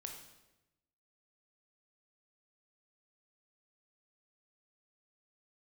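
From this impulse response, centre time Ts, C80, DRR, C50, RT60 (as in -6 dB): 32 ms, 7.5 dB, 2.5 dB, 5.0 dB, 1.0 s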